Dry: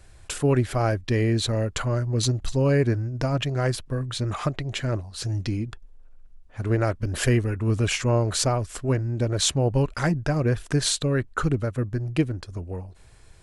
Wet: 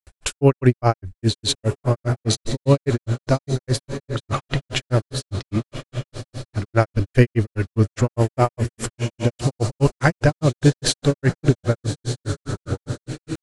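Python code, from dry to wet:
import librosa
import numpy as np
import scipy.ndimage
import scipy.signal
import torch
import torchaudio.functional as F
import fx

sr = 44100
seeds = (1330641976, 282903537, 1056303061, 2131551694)

y = fx.echo_diffused(x, sr, ms=1210, feedback_pct=45, wet_db=-10.5)
y = fx.granulator(y, sr, seeds[0], grain_ms=125.0, per_s=4.9, spray_ms=100.0, spread_st=0)
y = y * 10.0 ** (9.0 / 20.0)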